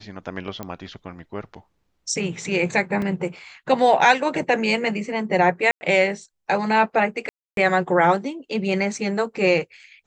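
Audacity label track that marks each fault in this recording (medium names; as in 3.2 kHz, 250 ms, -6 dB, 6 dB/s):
0.630000	0.630000	pop -17 dBFS
3.020000	3.020000	dropout 3.2 ms
5.710000	5.810000	dropout 100 ms
7.290000	7.570000	dropout 282 ms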